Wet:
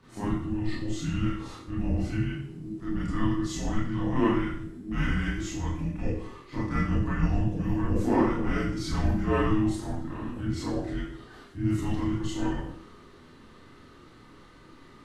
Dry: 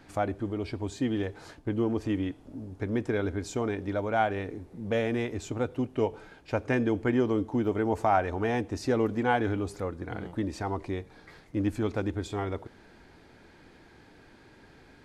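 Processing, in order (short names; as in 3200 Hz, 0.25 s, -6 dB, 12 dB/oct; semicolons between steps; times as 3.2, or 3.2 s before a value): transient shaper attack -6 dB, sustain +1 dB; frequency shift -420 Hz; Schroeder reverb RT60 0.57 s, combs from 25 ms, DRR -9.5 dB; gain -6 dB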